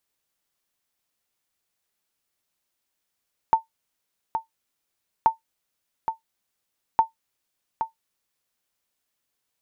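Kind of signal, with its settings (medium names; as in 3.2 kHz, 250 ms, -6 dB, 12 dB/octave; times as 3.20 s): sonar ping 898 Hz, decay 0.13 s, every 1.73 s, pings 3, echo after 0.82 s, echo -8.5 dB -8 dBFS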